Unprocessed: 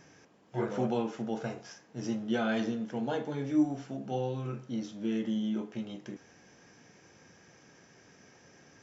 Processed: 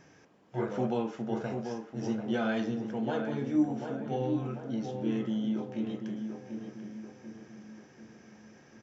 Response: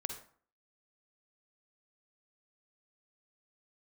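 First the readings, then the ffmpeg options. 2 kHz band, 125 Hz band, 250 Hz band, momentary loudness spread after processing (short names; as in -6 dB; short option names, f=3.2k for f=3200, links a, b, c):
0.0 dB, +1.0 dB, +1.0 dB, 18 LU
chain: -filter_complex "[0:a]highshelf=f=4.4k:g=-6,asplit=2[a][b];[b]adelay=740,lowpass=f=1.8k:p=1,volume=-6dB,asplit=2[c][d];[d]adelay=740,lowpass=f=1.8k:p=1,volume=0.49,asplit=2[e][f];[f]adelay=740,lowpass=f=1.8k:p=1,volume=0.49,asplit=2[g][h];[h]adelay=740,lowpass=f=1.8k:p=1,volume=0.49,asplit=2[i][j];[j]adelay=740,lowpass=f=1.8k:p=1,volume=0.49,asplit=2[k][l];[l]adelay=740,lowpass=f=1.8k:p=1,volume=0.49[m];[c][e][g][i][k][m]amix=inputs=6:normalize=0[n];[a][n]amix=inputs=2:normalize=0"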